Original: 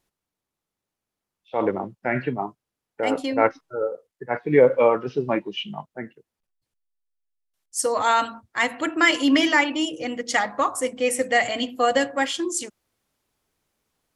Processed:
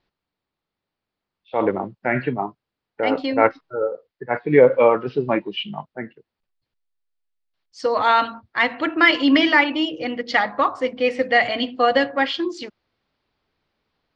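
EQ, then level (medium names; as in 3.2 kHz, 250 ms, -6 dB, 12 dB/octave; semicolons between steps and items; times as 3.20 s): Chebyshev low-pass 4.6 kHz, order 4; +3.5 dB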